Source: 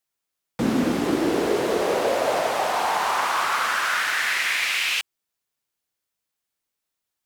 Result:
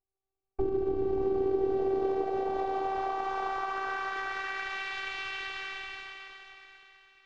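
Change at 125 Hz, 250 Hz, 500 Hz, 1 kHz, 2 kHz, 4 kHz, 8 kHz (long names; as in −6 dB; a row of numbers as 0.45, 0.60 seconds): −10.0 dB, −10.0 dB, −4.5 dB, −8.5 dB, −11.5 dB, −15.5 dB, below −20 dB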